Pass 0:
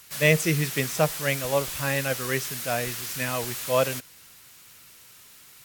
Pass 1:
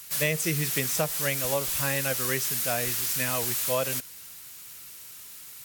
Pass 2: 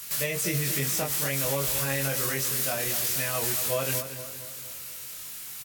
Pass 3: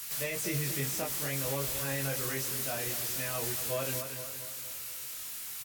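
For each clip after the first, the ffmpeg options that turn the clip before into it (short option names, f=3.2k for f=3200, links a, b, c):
-af "highshelf=f=5.6k:g=8.5,acompressor=threshold=-23dB:ratio=5"
-filter_complex "[0:a]alimiter=limit=-22.5dB:level=0:latency=1:release=101,asplit=2[a][b];[b]adelay=22,volume=-2.5dB[c];[a][c]amix=inputs=2:normalize=0,asplit=2[d][e];[e]adelay=232,lowpass=f=2k:p=1,volume=-9dB,asplit=2[f][g];[g]adelay=232,lowpass=f=2k:p=1,volume=0.51,asplit=2[h][i];[i]adelay=232,lowpass=f=2k:p=1,volume=0.51,asplit=2[j][k];[k]adelay=232,lowpass=f=2k:p=1,volume=0.51,asplit=2[l][m];[m]adelay=232,lowpass=f=2k:p=1,volume=0.51,asplit=2[n][o];[o]adelay=232,lowpass=f=2k:p=1,volume=0.51[p];[d][f][h][j][l][n][p]amix=inputs=7:normalize=0,volume=3dB"
-filter_complex "[0:a]acrossover=split=570[a][b];[a]flanger=delay=2.3:depth=1.1:regen=-67:speed=1.4:shape=triangular[c];[b]asoftclip=type=tanh:threshold=-32.5dB[d];[c][d]amix=inputs=2:normalize=0"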